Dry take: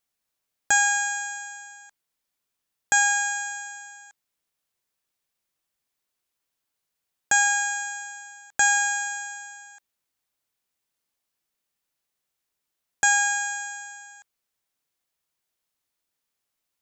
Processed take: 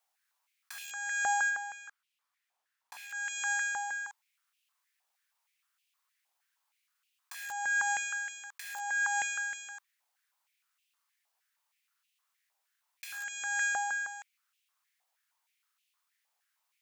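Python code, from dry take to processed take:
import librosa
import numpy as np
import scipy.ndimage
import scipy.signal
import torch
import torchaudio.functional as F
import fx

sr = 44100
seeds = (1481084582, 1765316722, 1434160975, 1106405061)

y = (np.mod(10.0 ** (14.0 / 20.0) * x + 1.0, 2.0) - 1.0) / 10.0 ** (14.0 / 20.0)
y = fx.over_compress(y, sr, threshold_db=-33.0, ratio=-1.0)
y = fx.tilt_eq(y, sr, slope=-2.0, at=(1.49, 3.13), fade=0.02)
y = fx.filter_held_highpass(y, sr, hz=6.4, low_hz=780.0, high_hz=2700.0)
y = y * 10.0 ** (-6.5 / 20.0)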